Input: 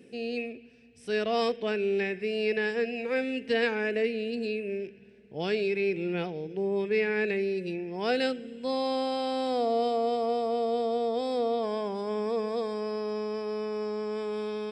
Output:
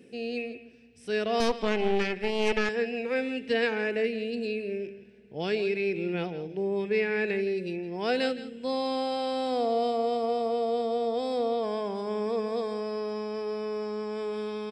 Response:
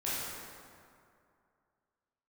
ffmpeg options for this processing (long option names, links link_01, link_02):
-filter_complex "[0:a]aecho=1:1:166:0.188,asettb=1/sr,asplit=3[link_01][link_02][link_03];[link_01]atrim=end=1.404[link_04];[link_02]atrim=start=1.4:end=2.69,asetpts=PTS-STARTPTS,afade=type=in:duration=0.004:curve=qsin,afade=type=out:start_time=1.286:duration=0.004:curve=qsin,aeval=exprs='0.15*(cos(1*acos(clip(val(0)/0.15,-1,1)))-cos(1*PI/2))+0.0422*(cos(4*acos(clip(val(0)/0.15,-1,1)))-cos(4*PI/2))':channel_layout=same[link_05];[link_03]atrim=start=2.686[link_06];[link_04][link_05]acrossfade=duration=0.004:curve1=hsin:curve2=qsin[link_07];[link_07][link_06]acrossfade=duration=0.004:curve1=qsin:curve2=hsin"